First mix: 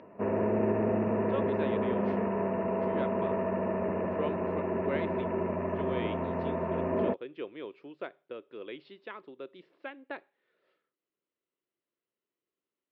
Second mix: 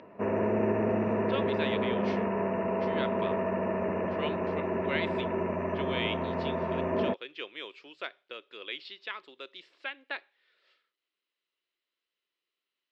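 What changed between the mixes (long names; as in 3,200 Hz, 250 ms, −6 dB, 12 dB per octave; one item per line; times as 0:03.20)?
speech: add spectral tilt +4.5 dB per octave
master: add high-shelf EQ 2,000 Hz +8 dB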